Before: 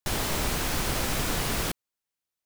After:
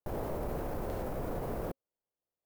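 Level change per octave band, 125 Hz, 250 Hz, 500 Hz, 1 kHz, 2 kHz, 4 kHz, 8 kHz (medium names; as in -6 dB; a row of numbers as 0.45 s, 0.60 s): -7.5 dB, -6.5 dB, -2.0 dB, -8.0 dB, -19.0 dB, -28.0 dB, -26.5 dB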